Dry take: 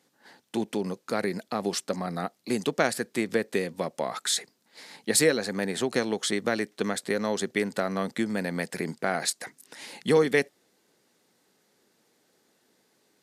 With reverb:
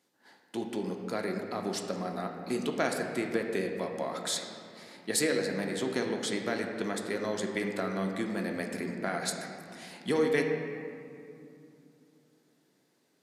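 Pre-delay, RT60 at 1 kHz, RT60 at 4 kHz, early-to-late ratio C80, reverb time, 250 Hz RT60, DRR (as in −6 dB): 3 ms, 2.4 s, 1.4 s, 5.5 dB, 2.6 s, 3.8 s, 2.0 dB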